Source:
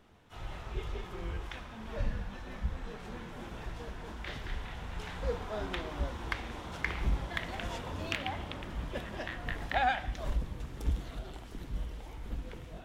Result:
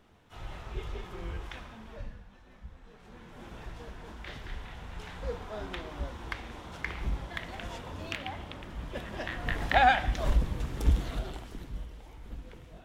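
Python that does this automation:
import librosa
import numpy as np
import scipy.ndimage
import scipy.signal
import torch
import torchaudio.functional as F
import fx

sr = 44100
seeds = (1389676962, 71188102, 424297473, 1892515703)

y = fx.gain(x, sr, db=fx.line((1.67, 0.0), (2.22, -12.5), (2.82, -12.5), (3.51, -2.0), (8.76, -2.0), (9.73, 7.0), (11.19, 7.0), (11.88, -4.0)))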